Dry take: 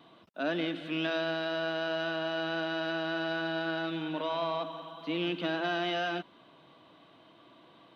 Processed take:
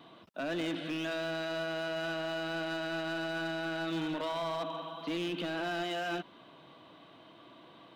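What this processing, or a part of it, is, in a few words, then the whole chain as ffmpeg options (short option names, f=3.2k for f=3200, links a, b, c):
limiter into clipper: -af "alimiter=level_in=3.5dB:limit=-24dB:level=0:latency=1:release=87,volume=-3.5dB,asoftclip=type=hard:threshold=-33dB,volume=2.5dB"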